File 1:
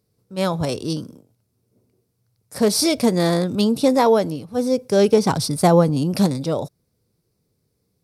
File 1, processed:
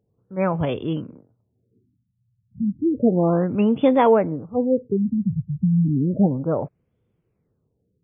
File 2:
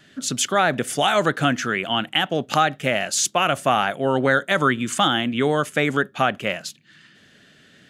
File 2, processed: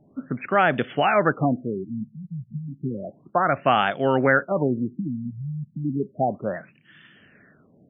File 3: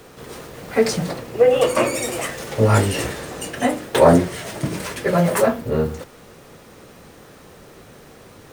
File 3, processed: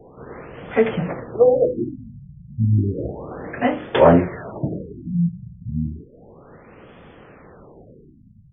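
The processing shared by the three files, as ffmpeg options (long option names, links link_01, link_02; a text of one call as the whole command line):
ffmpeg -i in.wav -af "afftfilt=real='re*lt(b*sr/1024,200*pow(3600/200,0.5+0.5*sin(2*PI*0.32*pts/sr)))':imag='im*lt(b*sr/1024,200*pow(3600/200,0.5+0.5*sin(2*PI*0.32*pts/sr)))':win_size=1024:overlap=0.75" out.wav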